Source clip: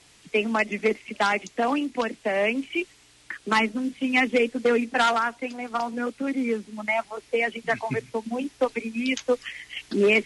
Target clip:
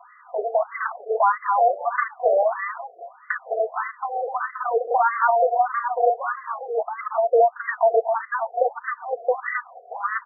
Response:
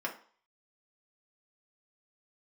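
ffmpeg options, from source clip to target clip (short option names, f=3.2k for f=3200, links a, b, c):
-filter_complex "[0:a]highpass=230,equalizer=f=410:t=q:w=4:g=-9,equalizer=f=670:t=q:w=4:g=8,equalizer=f=1.2k:t=q:w=4:g=4,equalizer=f=1.7k:t=q:w=4:g=-8,lowpass=f=2.3k:w=0.5412,lowpass=f=2.3k:w=1.3066,aecho=1:1:4.1:0.93,asplit=2[a][b];[b]asoftclip=type=tanh:threshold=-19.5dB,volume=-5dB[c];[a][c]amix=inputs=2:normalize=0,acrossover=split=290|1100[d][e][f];[d]acompressor=threshold=-24dB:ratio=4[g];[e]acompressor=threshold=-22dB:ratio=4[h];[f]acompressor=threshold=-30dB:ratio=4[i];[g][h][i]amix=inputs=3:normalize=0,aeval=exprs='0.398*sin(PI/2*3.16*val(0)/0.398)':c=same,aecho=1:1:223|259:0.168|0.596,afftfilt=real='re*between(b*sr/1024,520*pow(1500/520,0.5+0.5*sin(2*PI*1.6*pts/sr))/1.41,520*pow(1500/520,0.5+0.5*sin(2*PI*1.6*pts/sr))*1.41)':imag='im*between(b*sr/1024,520*pow(1500/520,0.5+0.5*sin(2*PI*1.6*pts/sr))/1.41,520*pow(1500/520,0.5+0.5*sin(2*PI*1.6*pts/sr))*1.41)':win_size=1024:overlap=0.75,volume=-3.5dB"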